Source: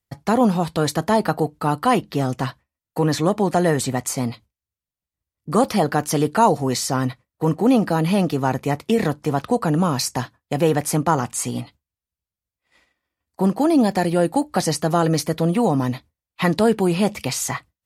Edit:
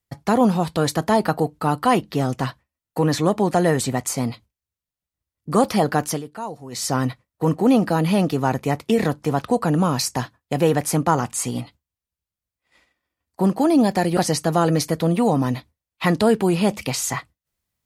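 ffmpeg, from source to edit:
-filter_complex "[0:a]asplit=4[s0][s1][s2][s3];[s0]atrim=end=6.22,asetpts=PTS-STARTPTS,afade=t=out:st=6.08:d=0.14:silence=0.16788[s4];[s1]atrim=start=6.22:end=6.71,asetpts=PTS-STARTPTS,volume=0.168[s5];[s2]atrim=start=6.71:end=14.172,asetpts=PTS-STARTPTS,afade=t=in:d=0.14:silence=0.16788[s6];[s3]atrim=start=14.548[s7];[s4][s5][s6]concat=n=3:v=0:a=1[s8];[s8][s7]acrossfade=d=0.004:c1=hsin:c2=hsin"

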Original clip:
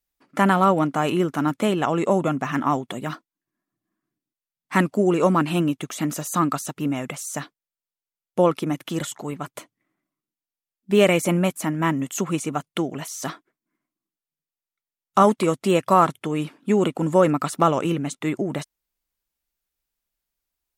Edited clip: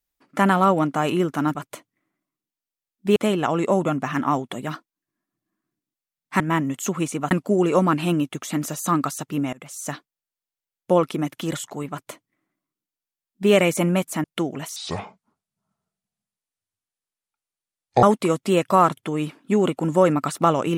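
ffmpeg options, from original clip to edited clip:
-filter_complex "[0:a]asplit=9[s0][s1][s2][s3][s4][s5][s6][s7][s8];[s0]atrim=end=1.552[s9];[s1]atrim=start=9.388:end=11.002[s10];[s2]atrim=start=1.548:end=4.792[s11];[s3]atrim=start=11.718:end=12.632[s12];[s4]atrim=start=4.788:end=7.01,asetpts=PTS-STARTPTS,afade=t=out:st=2.218:d=0.004:c=hsin:silence=0.0749894[s13];[s5]atrim=start=7.01:end=11.722,asetpts=PTS-STARTPTS,afade=t=in:d=0.34:silence=0.0749894[s14];[s6]atrim=start=12.628:end=13.154[s15];[s7]atrim=start=13.15:end=15.21,asetpts=PTS-STARTPTS,asetrate=27783,aresample=44100[s16];[s8]atrim=start=15.206[s17];[s9][s10]acrossfade=d=0.004:c1=hsin:c2=hsin[s18];[s18][s11]acrossfade=d=0.004:c1=hsin:c2=hsin[s19];[s19][s12]acrossfade=d=0.004:c1=hsin:c2=hsin[s20];[s13][s14]concat=n=2:v=0:a=1[s21];[s20][s21]acrossfade=d=0.004:c1=hsin:c2=hsin[s22];[s22][s15]acrossfade=d=0.004:c1=hsin:c2=hsin[s23];[s23][s16]acrossfade=d=0.004:c1=hsin:c2=hsin[s24];[s24][s17]acrossfade=d=0.004:c1=hsin:c2=hsin"

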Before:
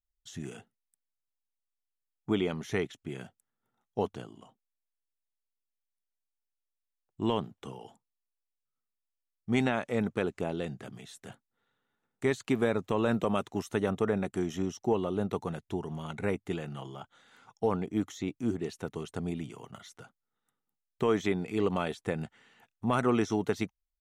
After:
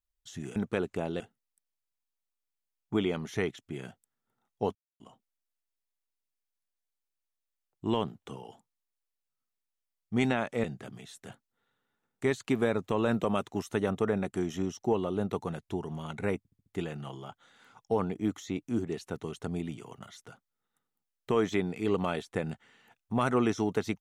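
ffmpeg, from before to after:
-filter_complex "[0:a]asplit=10[s0][s1][s2][s3][s4][s5][s6][s7][s8][s9];[s0]atrim=end=0.562[s10];[s1]atrim=start=9.998:end=10.642[s11];[s2]atrim=start=0.558:end=4.11,asetpts=PTS-STARTPTS,afade=t=out:st=3.548:d=0.004:c=hsin[s12];[s3]atrim=start=4.11:end=4.36,asetpts=PTS-STARTPTS,volume=0[s13];[s4]atrim=start=4.36:end=10.002,asetpts=PTS-STARTPTS,afade=t=in:d=0.004:c=hsin[s14];[s5]atrim=start=10.638:end=16.452[s15];[s6]atrim=start=16.378:end=16.452[s16];[s7]atrim=start=16.378:end=16.452[s17];[s8]atrim=start=16.378:end=16.452[s18];[s9]atrim=start=16.378[s19];[s10][s11]acrossfade=d=0.004:c1=hsin:c2=hsin[s20];[s12][s13][s14]concat=n=3:v=0:a=1[s21];[s20][s21]acrossfade=d=0.004:c1=hsin:c2=hsin[s22];[s22][s15]acrossfade=d=0.004:c1=hsin:c2=hsin[s23];[s23][s16]acrossfade=d=0.004:c1=hsin:c2=hsin[s24];[s24][s17]acrossfade=d=0.004:c1=hsin:c2=hsin[s25];[s25][s18]acrossfade=d=0.004:c1=hsin:c2=hsin[s26];[s26][s19]acrossfade=d=0.004:c1=hsin:c2=hsin"

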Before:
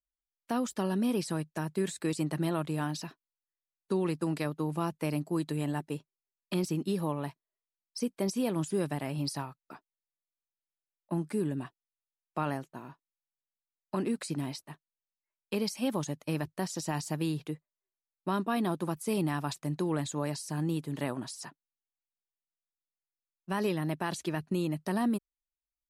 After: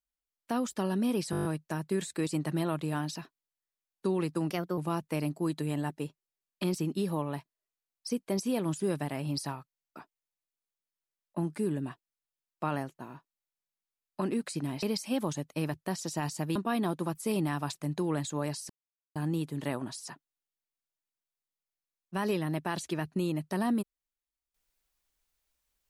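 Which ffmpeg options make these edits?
-filter_complex "[0:a]asplit=21[s0][s1][s2][s3][s4][s5][s6][s7][s8][s9][s10][s11][s12][s13][s14][s15][s16][s17][s18][s19][s20];[s0]atrim=end=1.332[s21];[s1]atrim=start=1.308:end=1.332[s22];[s2]atrim=start=1.308:end=1.332[s23];[s3]atrim=start=1.308:end=1.332[s24];[s4]atrim=start=1.308:end=1.332[s25];[s5]atrim=start=1.308:end=1.332[s26];[s6]atrim=start=1.308:end=1.332[s27];[s7]atrim=start=1.308:end=4.364[s28];[s8]atrim=start=4.36:end=4.68,asetpts=PTS-STARTPTS,asetrate=51156,aresample=44100[s29];[s9]atrim=start=4.676:end=9.612[s30];[s10]atrim=start=9.588:end=9.612[s31];[s11]atrim=start=9.588:end=9.612[s32];[s12]atrim=start=9.588:end=9.612[s33];[s13]atrim=start=9.588:end=9.612[s34];[s14]atrim=start=9.588:end=9.612[s35];[s15]atrim=start=9.588:end=9.612[s36];[s16]atrim=start=9.588:end=9.612[s37];[s17]atrim=start=9.588:end=14.572[s38];[s18]atrim=start=15.538:end=17.272[s39];[s19]atrim=start=18.368:end=20.51,asetpts=PTS-STARTPTS,afade=t=out:st=2.138:d=0.004:c=hsin,apad=pad_dur=0.46[s40];[s20]atrim=start=20.51,asetpts=PTS-STARTPTS,afade=t=in:d=0.004:c=hsin[s41];[s21][s22]acrossfade=d=0.004:c1=hsin:c2=hsin[s42];[s42][s23]acrossfade=d=0.004:c1=hsin:c2=hsin[s43];[s43][s24]acrossfade=d=0.004:c1=hsin:c2=hsin[s44];[s44][s25]acrossfade=d=0.004:c1=hsin:c2=hsin[s45];[s45][s26]acrossfade=d=0.004:c1=hsin:c2=hsin[s46];[s46][s27]acrossfade=d=0.004:c1=hsin:c2=hsin[s47];[s47][s28]acrossfade=d=0.004:c1=hsin:c2=hsin[s48];[s48][s29]acrossfade=d=0.004:c1=hsin:c2=hsin[s49];[s49][s30]acrossfade=d=0.004:c1=hsin:c2=hsin[s50];[s50][s31]acrossfade=d=0.004:c1=hsin:c2=hsin[s51];[s51][s32]acrossfade=d=0.004:c1=hsin:c2=hsin[s52];[s52][s33]acrossfade=d=0.004:c1=hsin:c2=hsin[s53];[s53][s34]acrossfade=d=0.004:c1=hsin:c2=hsin[s54];[s54][s35]acrossfade=d=0.004:c1=hsin:c2=hsin[s55];[s55][s36]acrossfade=d=0.004:c1=hsin:c2=hsin[s56];[s56][s37]acrossfade=d=0.004:c1=hsin:c2=hsin[s57];[s57][s38]acrossfade=d=0.004:c1=hsin:c2=hsin[s58];[s58][s39]acrossfade=d=0.004:c1=hsin:c2=hsin[s59];[s40][s41]concat=n=2:v=0:a=1[s60];[s59][s60]acrossfade=d=0.004:c1=hsin:c2=hsin"

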